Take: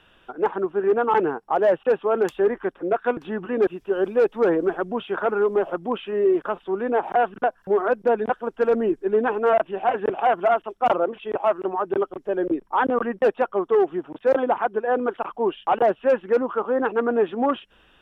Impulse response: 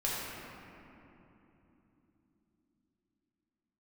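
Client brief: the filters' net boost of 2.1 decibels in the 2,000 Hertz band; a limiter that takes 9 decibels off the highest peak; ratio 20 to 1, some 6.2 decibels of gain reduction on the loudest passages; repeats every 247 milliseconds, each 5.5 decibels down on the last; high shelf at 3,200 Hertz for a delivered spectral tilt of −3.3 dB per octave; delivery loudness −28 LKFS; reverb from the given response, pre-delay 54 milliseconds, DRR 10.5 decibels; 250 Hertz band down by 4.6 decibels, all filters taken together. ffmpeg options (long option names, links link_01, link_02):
-filter_complex "[0:a]equalizer=frequency=250:width_type=o:gain=-7,equalizer=frequency=2000:width_type=o:gain=4.5,highshelf=frequency=3200:gain=-4.5,acompressor=threshold=-21dB:ratio=20,alimiter=limit=-21.5dB:level=0:latency=1,aecho=1:1:247|494|741|988|1235|1482|1729:0.531|0.281|0.149|0.079|0.0419|0.0222|0.0118,asplit=2[link_01][link_02];[1:a]atrim=start_sample=2205,adelay=54[link_03];[link_02][link_03]afir=irnorm=-1:irlink=0,volume=-17.5dB[link_04];[link_01][link_04]amix=inputs=2:normalize=0,volume=1.5dB"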